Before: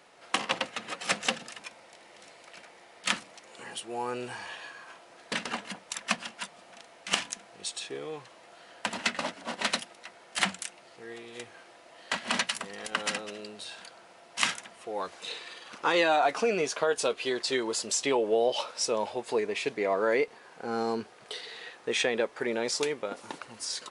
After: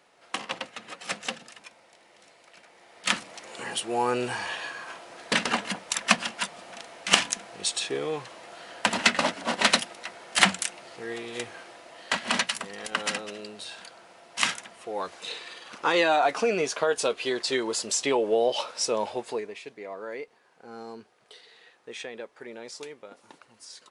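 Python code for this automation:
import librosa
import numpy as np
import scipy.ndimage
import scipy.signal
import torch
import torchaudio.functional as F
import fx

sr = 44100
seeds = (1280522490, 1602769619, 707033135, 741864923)

y = fx.gain(x, sr, db=fx.line((2.61, -4.0), (3.44, 8.0), (11.46, 8.0), (12.53, 2.0), (19.19, 2.0), (19.63, -11.0)))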